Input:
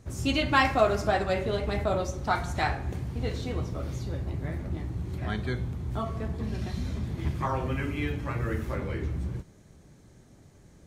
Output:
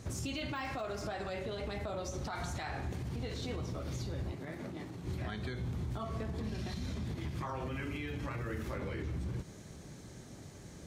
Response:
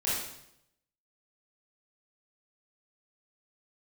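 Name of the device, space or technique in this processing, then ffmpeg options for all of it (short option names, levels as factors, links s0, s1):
broadcast voice chain: -filter_complex "[0:a]highpass=f=72:p=1,deesser=0.85,acompressor=threshold=0.0158:ratio=4,equalizer=f=4700:t=o:w=1.8:g=4,alimiter=level_in=3.98:limit=0.0631:level=0:latency=1:release=80,volume=0.251,asettb=1/sr,asplit=3[s0][s1][s2];[s0]atrim=end=4.324[s3];[s1]atrim=start=4.32:end=5.05,asetpts=PTS-STARTPTS,afade=t=in:d=0.004:c=qsin,afade=t=out:st=0.726:d=0.004:c=qsin,highpass=180[s4];[s2]atrim=start=5.046[s5];[s3][s4]acrossfade=d=0.004:c1=hsin:c2=qsin[s6];[s6][s5]acrossfade=d=0.004:c1=qsin:c2=hsin,volume=1.88"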